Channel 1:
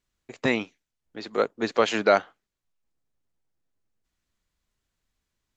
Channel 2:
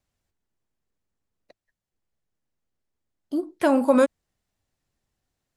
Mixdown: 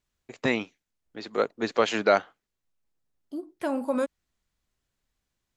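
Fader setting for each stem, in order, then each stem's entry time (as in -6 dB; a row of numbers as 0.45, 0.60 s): -1.5, -9.0 dB; 0.00, 0.00 s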